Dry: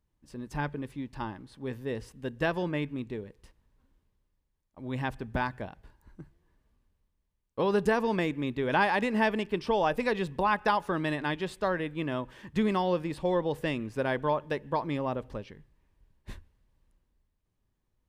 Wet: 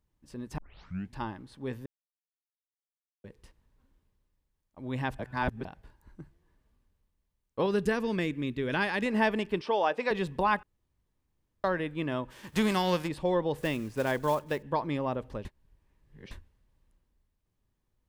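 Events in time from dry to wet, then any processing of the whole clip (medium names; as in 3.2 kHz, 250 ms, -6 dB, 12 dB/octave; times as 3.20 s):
0.58 s: tape start 0.57 s
1.86–3.24 s: mute
5.19–5.65 s: reverse
7.66–9.06 s: peaking EQ 820 Hz -9.5 dB 1.1 oct
9.61–10.11 s: band-pass 350–5500 Hz
10.63–11.64 s: room tone
12.30–13.07 s: formants flattened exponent 0.6
13.58–14.63 s: block-companded coder 5-bit
15.45–16.31 s: reverse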